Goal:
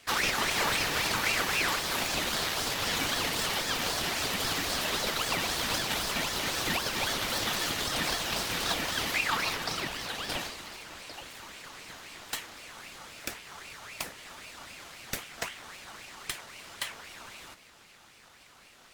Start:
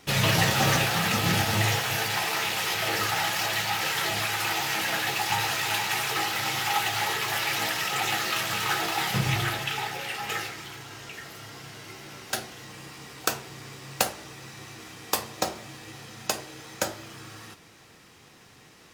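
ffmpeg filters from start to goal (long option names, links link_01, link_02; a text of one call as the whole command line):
ffmpeg -i in.wav -af "alimiter=limit=-15dB:level=0:latency=1:release=264,aeval=exprs='val(0)*sin(2*PI*1800*n/s+1800*0.45/3.8*sin(2*PI*3.8*n/s))':channel_layout=same" out.wav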